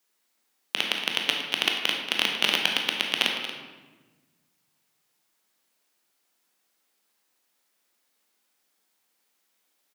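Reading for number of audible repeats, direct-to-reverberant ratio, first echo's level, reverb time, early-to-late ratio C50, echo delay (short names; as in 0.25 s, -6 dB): 1, 0.5 dB, -12.0 dB, 1.3 s, 3.0 dB, 0.232 s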